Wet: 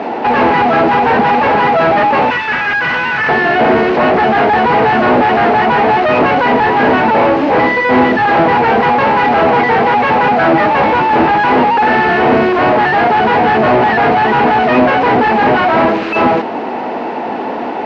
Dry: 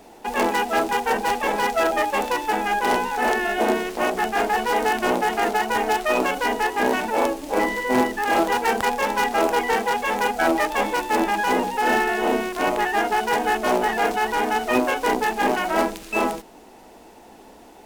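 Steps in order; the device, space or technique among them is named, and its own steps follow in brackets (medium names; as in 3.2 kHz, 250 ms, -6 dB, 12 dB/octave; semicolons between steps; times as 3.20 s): 2.30–3.29 s: high-pass 1.4 kHz 24 dB/octave; overdrive pedal into a guitar cabinet (overdrive pedal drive 35 dB, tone 1.3 kHz, clips at -7 dBFS; cabinet simulation 80–3900 Hz, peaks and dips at 140 Hz +5 dB, 240 Hz +6 dB, 3.5 kHz -6 dB); trim +4.5 dB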